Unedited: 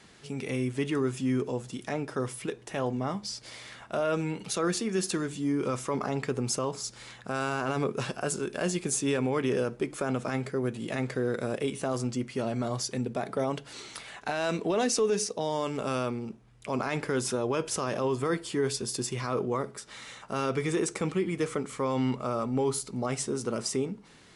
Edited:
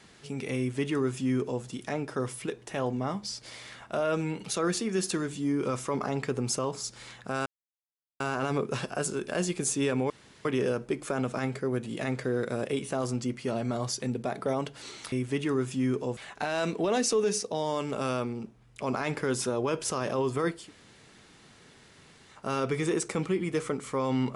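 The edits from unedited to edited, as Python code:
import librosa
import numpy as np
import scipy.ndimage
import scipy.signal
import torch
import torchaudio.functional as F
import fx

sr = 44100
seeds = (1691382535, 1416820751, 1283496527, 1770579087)

y = fx.edit(x, sr, fx.duplicate(start_s=0.58, length_s=1.05, to_s=14.03),
    fx.insert_silence(at_s=7.46, length_s=0.74),
    fx.insert_room_tone(at_s=9.36, length_s=0.35),
    fx.room_tone_fill(start_s=18.46, length_s=1.75, crossfade_s=0.24), tone=tone)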